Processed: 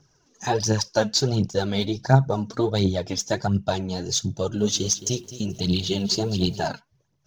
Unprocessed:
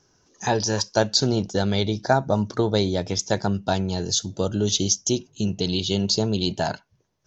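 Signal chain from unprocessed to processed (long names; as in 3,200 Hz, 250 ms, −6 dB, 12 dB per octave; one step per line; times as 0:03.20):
phase shifter 1.4 Hz, delay 4.7 ms, feedback 60%
parametric band 140 Hz +9 dB 0.4 octaves
0:04.35–0:06.65: feedback echo at a low word length 216 ms, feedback 35%, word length 7 bits, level −14 dB
level −3.5 dB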